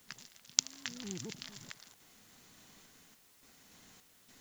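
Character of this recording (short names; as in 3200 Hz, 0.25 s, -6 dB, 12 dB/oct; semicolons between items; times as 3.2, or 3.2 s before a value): random-step tremolo, depth 80%; a quantiser's noise floor 12-bit, dither triangular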